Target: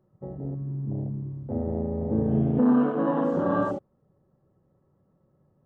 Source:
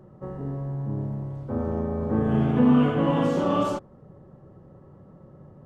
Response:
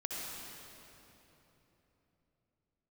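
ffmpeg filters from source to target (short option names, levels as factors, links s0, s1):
-filter_complex "[0:a]afwtdn=0.0447,asettb=1/sr,asplit=3[s0][s1][s2];[s0]atrim=end=2.594[s3];[s1]atrim=start=2.59:end=3.34,asetpts=PTS-STARTPTS,afade=t=in:d=0.004:c=qsin,afade=t=out:st=0.746:d=0.004:c=qsin,highpass=f=200:w=0.5412,highpass=f=200:w=1.3066[s4];[s2]atrim=start=3.336[s5];[s3][s4]acrossfade=d=0.004:c1=hsin:c2=qsin[s6];[s6][s5]acrossfade=d=0.004:c1=qsin:c2=hsin,volume=0.891"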